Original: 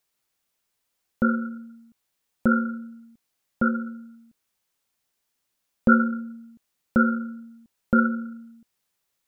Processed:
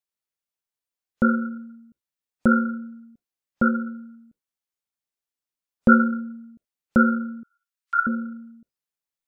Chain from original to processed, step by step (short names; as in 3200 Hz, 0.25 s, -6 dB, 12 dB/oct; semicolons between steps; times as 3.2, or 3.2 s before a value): spectral noise reduction 17 dB; 7.43–8.07 steep high-pass 1100 Hz 48 dB/oct; gain +2.5 dB